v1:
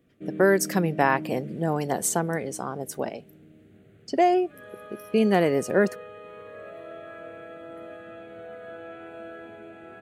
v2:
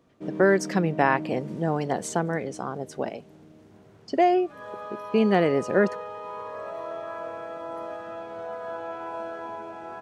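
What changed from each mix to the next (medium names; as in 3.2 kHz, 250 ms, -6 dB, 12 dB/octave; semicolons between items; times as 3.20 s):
speech: add low-pass 5 kHz 12 dB/octave; background: remove static phaser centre 2.3 kHz, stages 4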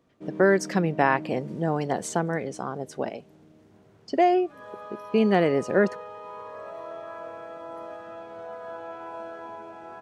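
background -3.5 dB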